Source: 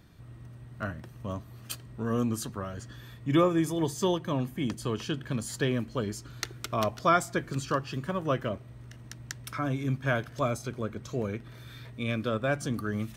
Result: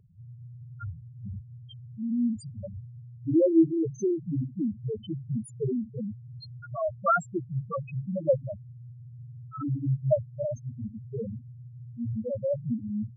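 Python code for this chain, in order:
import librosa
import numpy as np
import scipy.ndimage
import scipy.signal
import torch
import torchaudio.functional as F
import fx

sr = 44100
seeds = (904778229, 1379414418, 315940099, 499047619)

y = fx.spec_topn(x, sr, count=1)
y = fx.bell_lfo(y, sr, hz=1.1, low_hz=420.0, high_hz=3900.0, db=11)
y = y * librosa.db_to_amplitude(8.0)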